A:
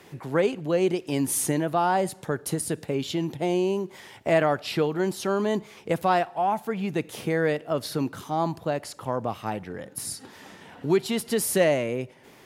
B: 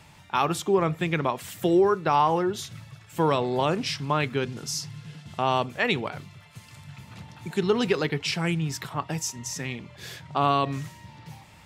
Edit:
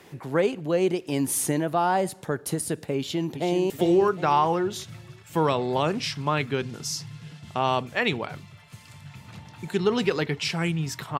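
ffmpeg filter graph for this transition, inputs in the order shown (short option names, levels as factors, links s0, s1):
-filter_complex "[0:a]apad=whole_dur=11.19,atrim=end=11.19,atrim=end=3.702[s0];[1:a]atrim=start=1.528:end=9.02[s1];[s0][s1]acrossfade=d=0.004:c1=hsin:c2=hsin,asplit=2[s2][s3];[s3]afade=t=in:st=2.97:d=0.01,afade=t=out:st=3.7:d=0.01,aecho=0:1:380|760|1140|1520|1900:0.421697|0.168679|0.0674714|0.0269886|0.0107954[s4];[s2][s4]amix=inputs=2:normalize=0"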